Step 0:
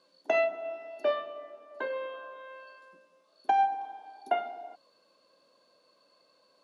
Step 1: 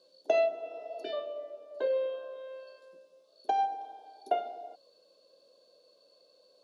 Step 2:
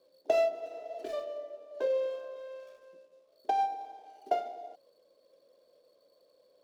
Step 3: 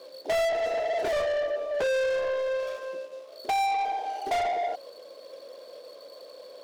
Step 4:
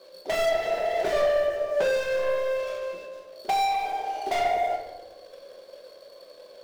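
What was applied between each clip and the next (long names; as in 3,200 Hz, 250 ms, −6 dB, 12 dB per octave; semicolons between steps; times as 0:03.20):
octave-band graphic EQ 125/250/500/1,000/2,000/4,000 Hz −5/−6/+10/−9/−11/+5 dB; healed spectral selection 0:00.61–0:01.11, 440–1,300 Hz before
running median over 15 samples
mid-hump overdrive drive 35 dB, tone 5,500 Hz, clips at −14.5 dBFS; level −5 dB
mu-law and A-law mismatch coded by A; rectangular room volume 450 cubic metres, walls mixed, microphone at 1.1 metres; level +1.5 dB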